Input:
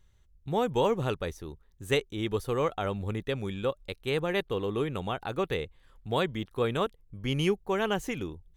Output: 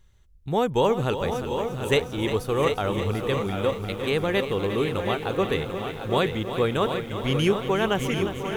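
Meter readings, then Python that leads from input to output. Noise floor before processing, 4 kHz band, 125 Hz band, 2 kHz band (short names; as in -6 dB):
-63 dBFS, +6.0 dB, +6.0 dB, +6.0 dB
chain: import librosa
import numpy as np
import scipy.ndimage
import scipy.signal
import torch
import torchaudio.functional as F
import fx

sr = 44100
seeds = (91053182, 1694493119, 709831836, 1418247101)

y = x + 10.0 ** (-7.5 / 20.0) * np.pad(x, (int(744 * sr / 1000.0), 0))[:len(x)]
y = fx.echo_crushed(y, sr, ms=353, feedback_pct=80, bits=9, wet_db=-10.5)
y = y * 10.0 ** (4.5 / 20.0)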